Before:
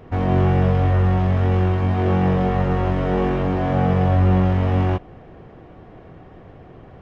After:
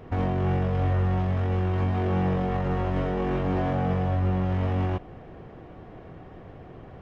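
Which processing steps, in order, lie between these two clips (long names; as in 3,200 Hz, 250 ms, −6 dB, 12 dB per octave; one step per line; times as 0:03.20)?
brickwall limiter −16.5 dBFS, peak gain reduction 9 dB
level −1.5 dB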